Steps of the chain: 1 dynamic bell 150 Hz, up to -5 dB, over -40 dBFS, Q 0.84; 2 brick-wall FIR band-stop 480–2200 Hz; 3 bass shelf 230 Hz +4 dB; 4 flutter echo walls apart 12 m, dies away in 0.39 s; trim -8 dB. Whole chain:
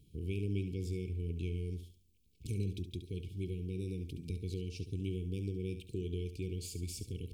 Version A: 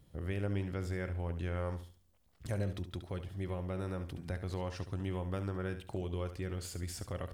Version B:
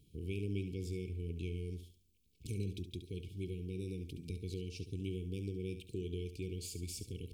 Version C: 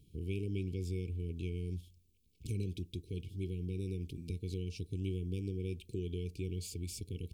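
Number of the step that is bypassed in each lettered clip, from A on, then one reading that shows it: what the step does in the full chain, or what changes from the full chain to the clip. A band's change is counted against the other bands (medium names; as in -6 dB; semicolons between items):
2, 2 kHz band +8.5 dB; 3, loudness change -2.5 LU; 4, echo-to-direct -10.5 dB to none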